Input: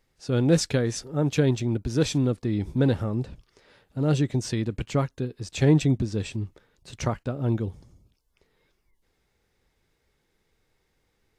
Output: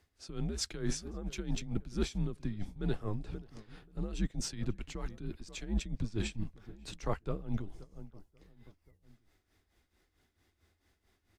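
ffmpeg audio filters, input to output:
-filter_complex "[0:a]asplit=2[a][b];[b]adelay=532,lowpass=f=1.5k:p=1,volume=-21dB,asplit=2[c][d];[d]adelay=532,lowpass=f=1.5k:p=1,volume=0.43,asplit=2[e][f];[f]adelay=532,lowpass=f=1.5k:p=1,volume=0.43[g];[a][c][e][g]amix=inputs=4:normalize=0,afreqshift=-100,areverse,acompressor=threshold=-28dB:ratio=10,areverse,tremolo=f=4.5:d=0.75,volume=1dB"

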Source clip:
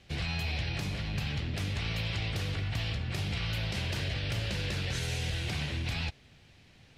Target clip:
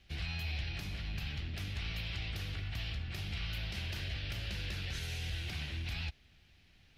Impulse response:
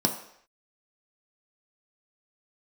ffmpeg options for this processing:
-af "equalizer=f=125:t=o:w=1:g=-11,equalizer=f=250:t=o:w=1:g=-6,equalizer=f=500:t=o:w=1:g=-11,equalizer=f=1k:t=o:w=1:g=-8,equalizer=f=2k:t=o:w=1:g=-4,equalizer=f=4k:t=o:w=1:g=-3,equalizer=f=8k:t=o:w=1:g=-11,volume=1dB"

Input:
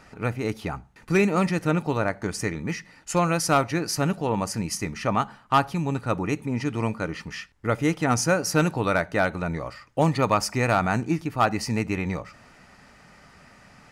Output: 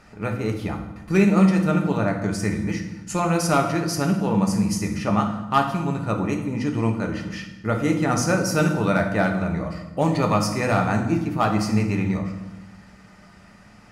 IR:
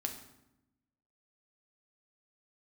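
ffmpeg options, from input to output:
-filter_complex "[0:a]lowshelf=f=430:g=3[a];[1:a]atrim=start_sample=2205,asetrate=34839,aresample=44100[b];[a][b]afir=irnorm=-1:irlink=0,volume=-2dB"

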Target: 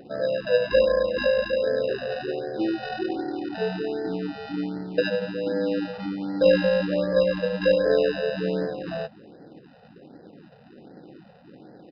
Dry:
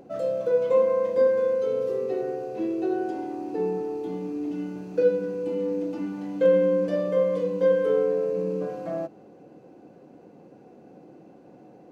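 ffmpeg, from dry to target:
-filter_complex "[0:a]highshelf=f=3.4k:g=-8.5,asplit=2[a][b];[b]acrusher=samples=40:mix=1:aa=0.000001,volume=-4dB[c];[a][c]amix=inputs=2:normalize=0,aresample=11025,aresample=44100,afftfilt=real='re*(1-between(b*sr/1024,290*pow(2900/290,0.5+0.5*sin(2*PI*1.3*pts/sr))/1.41,290*pow(2900/290,0.5+0.5*sin(2*PI*1.3*pts/sr))*1.41))':imag='im*(1-between(b*sr/1024,290*pow(2900/290,0.5+0.5*sin(2*PI*1.3*pts/sr))/1.41,290*pow(2900/290,0.5+0.5*sin(2*PI*1.3*pts/sr))*1.41))':win_size=1024:overlap=0.75"

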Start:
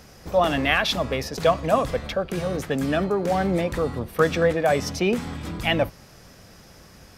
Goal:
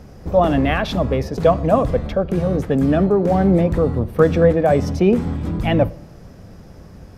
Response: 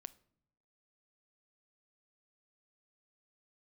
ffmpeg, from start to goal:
-filter_complex "[0:a]tiltshelf=f=1.1k:g=8,asplit=2[a][b];[1:a]atrim=start_sample=2205,asetrate=29106,aresample=44100,lowshelf=f=120:g=6[c];[b][c]afir=irnorm=-1:irlink=0,volume=2.5dB[d];[a][d]amix=inputs=2:normalize=0,volume=-4.5dB"

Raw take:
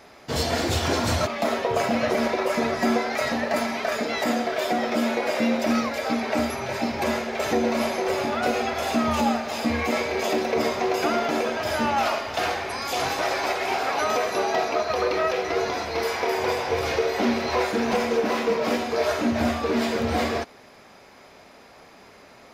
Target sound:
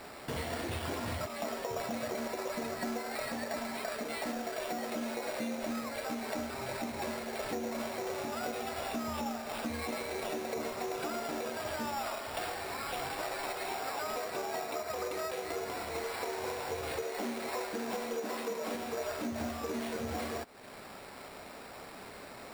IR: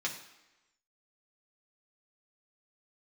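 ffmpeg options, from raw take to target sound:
-filter_complex "[0:a]asettb=1/sr,asplit=3[a][b][c];[a]atrim=end=17.034[d];[b]atrim=start=17.03:end=18.75,asetpts=PTS-STARTPTS,afade=t=in:d=0.004:c=qsin,afade=t=out:st=1.716:d=0.004:c=qsin,highpass=180,lowpass=6.7k[e];[c]atrim=start=18.746[f];[d][e]acrossfade=d=0.004:c1=hsin:c2=qsin[g];[g][f]acrossfade=d=0.004:c1=qsin:c2=hsin,acrusher=samples=7:mix=1:aa=0.000001,acompressor=threshold=-41dB:ratio=3,volume=1.5dB"

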